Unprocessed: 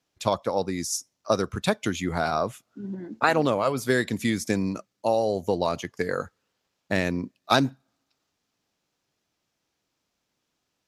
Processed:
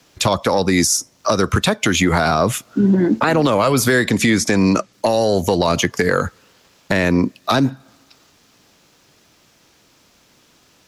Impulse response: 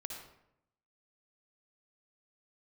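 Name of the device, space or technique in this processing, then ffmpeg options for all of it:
mastering chain: -filter_complex "[0:a]equalizer=frequency=760:width_type=o:width=0.32:gain=-2.5,acrossover=split=340|690|1700[link_01][link_02][link_03][link_04];[link_01]acompressor=threshold=-34dB:ratio=4[link_05];[link_02]acompressor=threshold=-38dB:ratio=4[link_06];[link_03]acompressor=threshold=-35dB:ratio=4[link_07];[link_04]acompressor=threshold=-39dB:ratio=4[link_08];[link_05][link_06][link_07][link_08]amix=inputs=4:normalize=0,acompressor=threshold=-34dB:ratio=3,asoftclip=type=tanh:threshold=-24dB,alimiter=level_in=29.5dB:limit=-1dB:release=50:level=0:latency=1,asettb=1/sr,asplit=3[link_09][link_10][link_11];[link_09]atrim=end=4.114[link_12];[link_10]atrim=start=4.11:end=4.93,asetpts=PTS-STARTPTS,afade=type=in:duration=0.004:curve=qsin,afade=type=out:start_time=0.816:duration=0.004:curve=qsin,lowpass=8600[link_13];[link_11]atrim=start=4.926[link_14];[link_12][link_13]acrossfade=duration=0.004:curve1=hsin:curve2=qsin[link_15];[link_15][link_14]acrossfade=duration=0.004:curve1=qsin:curve2=hsin,volume=-5.5dB"

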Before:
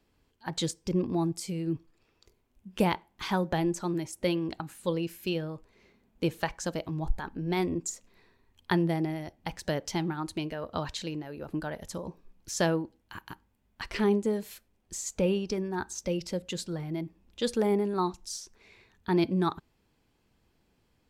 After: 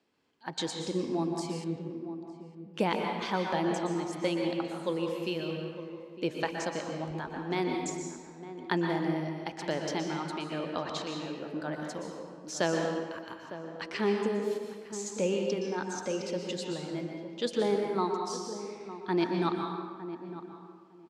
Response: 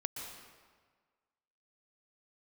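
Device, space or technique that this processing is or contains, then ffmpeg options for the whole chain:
supermarket ceiling speaker: -filter_complex "[0:a]highpass=220,lowpass=6900[link_01];[1:a]atrim=start_sample=2205[link_02];[link_01][link_02]afir=irnorm=-1:irlink=0,asettb=1/sr,asplit=3[link_03][link_04][link_05];[link_03]atrim=end=1.644[link_06];[link_04]atrim=start=1.64:end=2.74,asetpts=PTS-STARTPTS,afade=type=in:duration=0.004:curve=qsin,afade=type=out:start_time=1.096:duration=0.004:curve=qsin,lowpass=frequency=1300:poles=1[link_07];[link_05]atrim=start=2.736[link_08];[link_06][link_07]acrossfade=duration=0.004:curve1=hsin:curve2=qsin[link_09];[link_09][link_08]acrossfade=duration=0.004:curve1=qsin:curve2=hsin,asplit=2[link_10][link_11];[link_11]adelay=907,lowpass=frequency=960:poles=1,volume=-11.5dB,asplit=2[link_12][link_13];[link_13]adelay=907,lowpass=frequency=960:poles=1,volume=0.18[link_14];[link_10][link_12][link_14]amix=inputs=3:normalize=0"

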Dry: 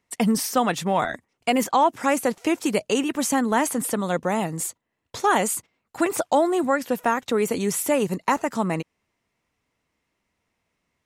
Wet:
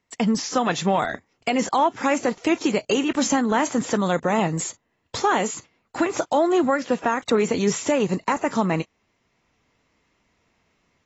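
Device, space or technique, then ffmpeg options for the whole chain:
low-bitrate web radio: -af "dynaudnorm=framelen=460:gausssize=3:maxgain=8dB,alimiter=limit=-10.5dB:level=0:latency=1:release=379" -ar 22050 -c:a aac -b:a 24k

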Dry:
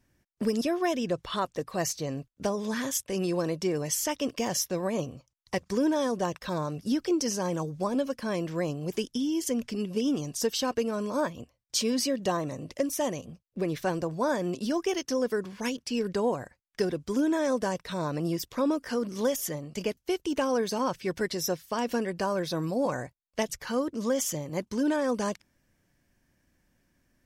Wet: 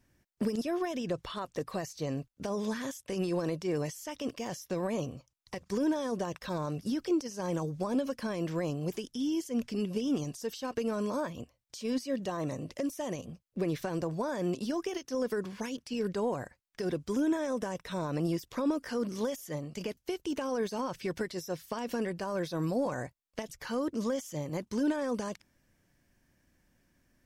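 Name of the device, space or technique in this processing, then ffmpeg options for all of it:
de-esser from a sidechain: -filter_complex "[0:a]asettb=1/sr,asplit=3[link_01][link_02][link_03];[link_01]atrim=end=17.134[link_04];[link_02]atrim=start=17.13:end=18.16,asetpts=PTS-STARTPTS,afade=type=in:duration=0.004:curve=qsin,afade=type=out:start_time=1.026:duration=0.004:curve=qsin,bandreject=frequency=4500:width=6.1[link_05];[link_03]atrim=start=18.156[link_06];[link_04][link_05]acrossfade=duration=0.004:curve1=hsin:curve2=qsin[link_07];[link_07][link_06]acrossfade=duration=0.004:curve1=qsin:curve2=hsin,asplit=2[link_08][link_09];[link_09]highpass=frequency=4800:poles=1,apad=whole_len=1202023[link_10];[link_08][link_10]sidechaincompress=threshold=-44dB:ratio=8:attack=1.8:release=60"

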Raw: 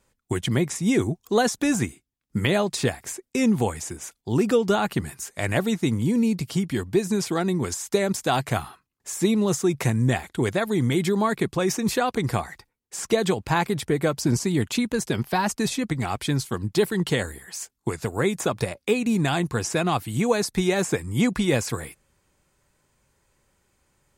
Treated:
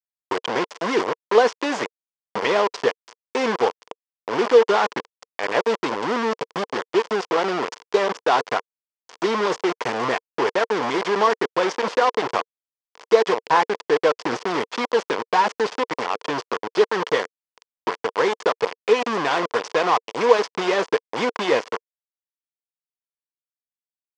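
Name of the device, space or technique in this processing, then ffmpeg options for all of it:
hand-held game console: -af "acrusher=bits=3:mix=0:aa=0.000001,highpass=440,equalizer=frequency=460:width_type=q:width=4:gain=9,equalizer=frequency=1000:width_type=q:width=4:gain=8,equalizer=frequency=2500:width_type=q:width=4:gain=-3,equalizer=frequency=3900:width_type=q:width=4:gain=-7,lowpass=frequency=4900:width=0.5412,lowpass=frequency=4900:width=1.3066,volume=2dB"

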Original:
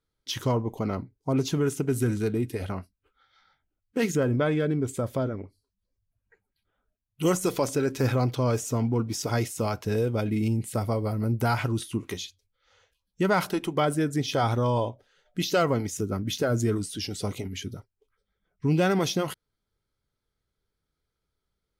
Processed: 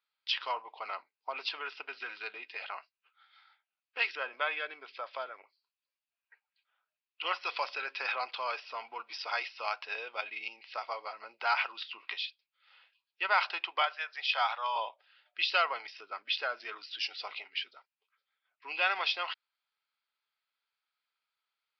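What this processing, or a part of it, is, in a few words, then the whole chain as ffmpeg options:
musical greeting card: -filter_complex "[0:a]aresample=11025,aresample=44100,highpass=frequency=830:width=0.5412,highpass=frequency=830:width=1.3066,equalizer=frequency=2600:width_type=o:width=0.32:gain=9.5,asettb=1/sr,asplit=3[link_01][link_02][link_03];[link_01]atrim=end=13.824[link_04];[link_02]atrim=start=13.82:end=14.76,asetpts=PTS-STARTPTS,afade=type=in:duration=0.004:curve=qsin,afade=type=out:start_time=0.936:duration=0.004:curve=qsin,highpass=frequency=600:width=0.5412,highpass=frequency=600:width=1.3066[link_05];[link_03]atrim=start=14.756[link_06];[link_04][link_05]acrossfade=duration=0.004:curve1=hsin:curve2=qsin[link_07];[link_07][link_06]acrossfade=duration=0.004:curve1=qsin:curve2=hsin"

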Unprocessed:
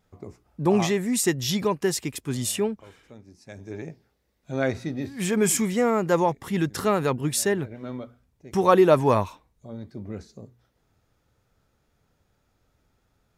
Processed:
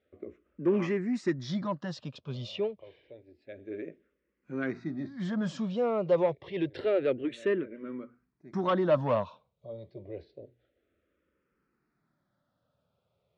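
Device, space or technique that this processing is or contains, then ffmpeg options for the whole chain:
barber-pole phaser into a guitar amplifier: -filter_complex "[0:a]asplit=2[link_01][link_02];[link_02]afreqshift=-0.28[link_03];[link_01][link_03]amix=inputs=2:normalize=1,asoftclip=type=tanh:threshold=-18dB,highpass=91,equalizer=frequency=100:width_type=q:width=4:gain=-5,equalizer=frequency=350:width_type=q:width=4:gain=5,equalizer=frequency=570:width_type=q:width=4:gain=9,equalizer=frequency=830:width_type=q:width=4:gain=-7,lowpass=frequency=3900:width=0.5412,lowpass=frequency=3900:width=1.3066,volume=-4dB"

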